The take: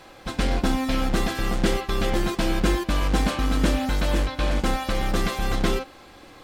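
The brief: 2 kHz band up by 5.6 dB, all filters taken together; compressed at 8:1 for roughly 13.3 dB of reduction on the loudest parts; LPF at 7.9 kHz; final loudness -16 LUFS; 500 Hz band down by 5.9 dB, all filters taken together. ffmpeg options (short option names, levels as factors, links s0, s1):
-af "lowpass=7900,equalizer=f=500:t=o:g=-8.5,equalizer=f=2000:t=o:g=7.5,acompressor=threshold=0.0282:ratio=8,volume=10"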